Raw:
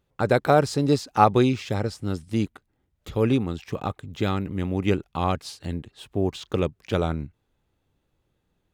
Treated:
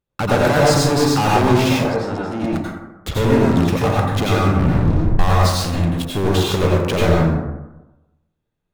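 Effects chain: 4.46 tape stop 0.73 s; sample leveller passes 5; compressor, threshold -13 dBFS, peak gain reduction 7.5 dB; 1.73–2.44 band-pass 960 Hz, Q 0.68; soft clip -14.5 dBFS, distortion -16 dB; reverb RT60 1.0 s, pre-delay 77 ms, DRR -5 dB; gain -2 dB

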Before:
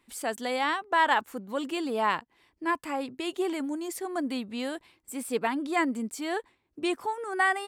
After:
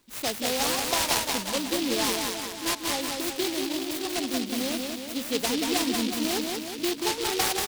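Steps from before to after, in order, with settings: 1.94–4.34 low shelf 360 Hz -7.5 dB; compressor, threshold -27 dBFS, peak gain reduction 9 dB; feedback echo 0.184 s, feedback 59%, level -3.5 dB; noise-modulated delay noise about 3500 Hz, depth 0.2 ms; gain +3.5 dB

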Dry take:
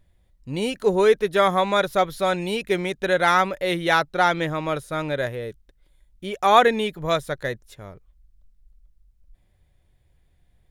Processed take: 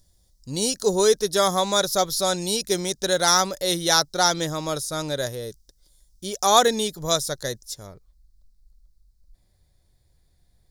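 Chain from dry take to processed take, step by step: resonant high shelf 3600 Hz +14 dB, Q 3, from 7.87 s +7 dB; gain -1.5 dB

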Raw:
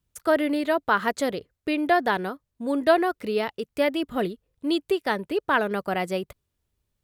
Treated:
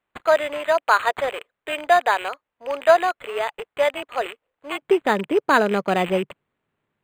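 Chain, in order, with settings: rattling part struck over -45 dBFS, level -25 dBFS; HPF 560 Hz 24 dB/oct, from 4.82 s 140 Hz; decimation joined by straight lines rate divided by 8×; gain +6.5 dB

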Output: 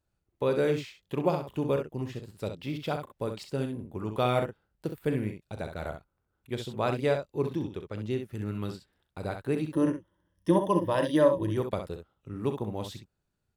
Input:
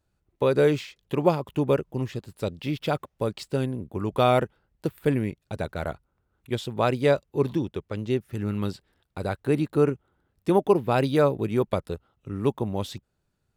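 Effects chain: 9.72–11.57 ripple EQ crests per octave 1.2, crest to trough 16 dB; early reflections 38 ms -12.5 dB, 65 ms -7.5 dB; gain -6 dB

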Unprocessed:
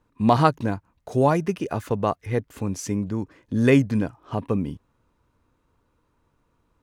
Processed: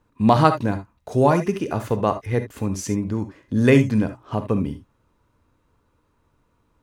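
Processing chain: non-linear reverb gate 90 ms rising, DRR 9 dB; gain +2 dB

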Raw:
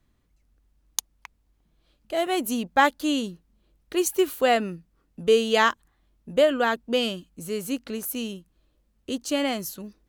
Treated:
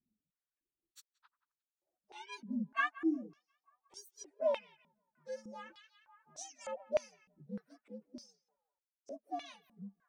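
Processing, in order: inharmonic rescaling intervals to 127%; reverb removal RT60 1.8 s; on a send: narrowing echo 0.178 s, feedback 58%, band-pass 1400 Hz, level -17.5 dB; on the sum: stepped band-pass 3.3 Hz 210–6900 Hz; gain -3 dB

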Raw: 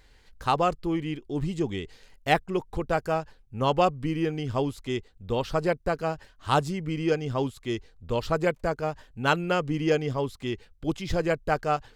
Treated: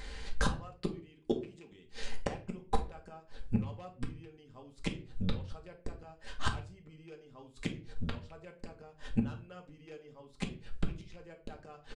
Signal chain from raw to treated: rattling part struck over -27 dBFS, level -18 dBFS; 0.62–1.72 HPF 220 Hz 6 dB/oct; in parallel at +1 dB: compressor 6:1, threshold -32 dBFS, peak gain reduction 15 dB; on the sum: hard clip -12.5 dBFS, distortion -23 dB; flipped gate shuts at -22 dBFS, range -35 dB; on a send at -2 dB: reverb RT60 0.40 s, pre-delay 4 ms; on the sum: downsampling 22050 Hz; gain +4.5 dB

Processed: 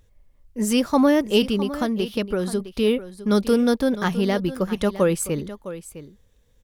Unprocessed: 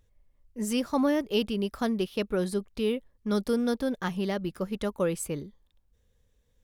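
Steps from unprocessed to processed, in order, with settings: 1.55–2.6 compressor, threshold -28 dBFS, peak gain reduction 5.5 dB; echo 0.658 s -14 dB; gain +8 dB

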